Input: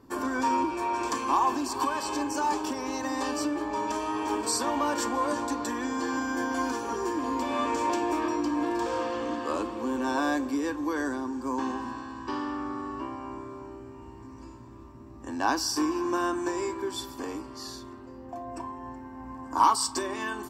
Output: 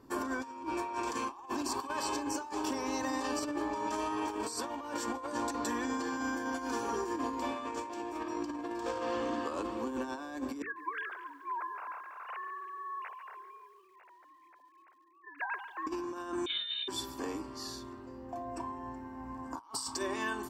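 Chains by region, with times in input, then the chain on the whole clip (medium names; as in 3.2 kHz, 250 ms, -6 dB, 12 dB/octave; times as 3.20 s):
10.62–15.87 s: formants replaced by sine waves + high-pass 1.2 kHz + bit-crushed delay 142 ms, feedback 55%, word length 10-bit, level -14.5 dB
16.46–16.88 s: doubling 33 ms -9 dB + frequency inversion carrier 4 kHz
whole clip: hum notches 50/100/150/200/250/300 Hz; compressor with a negative ratio -31 dBFS, ratio -0.5; trim -4.5 dB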